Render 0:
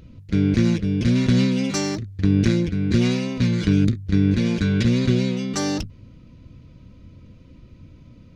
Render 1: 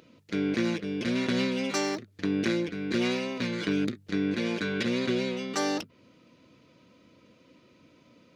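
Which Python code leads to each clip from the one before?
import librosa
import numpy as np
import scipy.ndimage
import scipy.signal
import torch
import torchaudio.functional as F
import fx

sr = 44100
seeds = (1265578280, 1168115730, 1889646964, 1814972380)

y = fx.dynamic_eq(x, sr, hz=6700.0, q=0.78, threshold_db=-48.0, ratio=4.0, max_db=-7)
y = scipy.signal.sosfilt(scipy.signal.butter(2, 390.0, 'highpass', fs=sr, output='sos'), y)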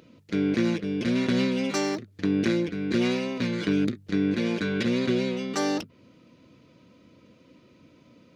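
y = fx.low_shelf(x, sr, hz=380.0, db=5.5)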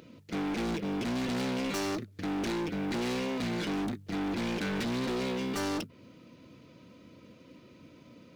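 y = fx.quant_float(x, sr, bits=4)
y = np.clip(10.0 ** (32.0 / 20.0) * y, -1.0, 1.0) / 10.0 ** (32.0 / 20.0)
y = y * 10.0 ** (1.5 / 20.0)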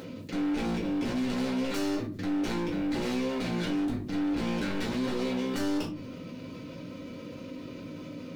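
y = fx.room_shoebox(x, sr, seeds[0], volume_m3=130.0, walls='furnished', distance_m=2.1)
y = fx.env_flatten(y, sr, amount_pct=50)
y = y * 10.0 ** (-7.5 / 20.0)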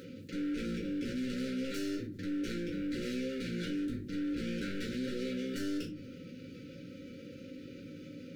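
y = fx.brickwall_bandstop(x, sr, low_hz=580.0, high_hz=1300.0)
y = y * 10.0 ** (-6.0 / 20.0)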